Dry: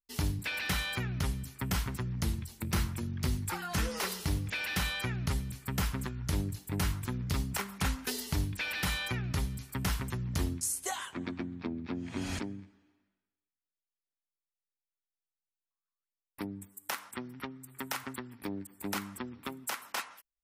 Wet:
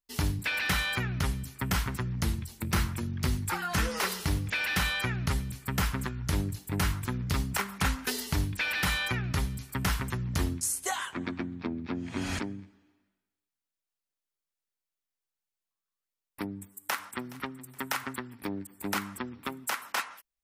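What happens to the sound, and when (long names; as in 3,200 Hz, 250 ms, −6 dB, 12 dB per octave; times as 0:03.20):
0:16.57–0:17.35: delay throw 420 ms, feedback 30%, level −17.5 dB
whole clip: dynamic equaliser 1,500 Hz, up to +4 dB, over −48 dBFS, Q 0.85; level +2.5 dB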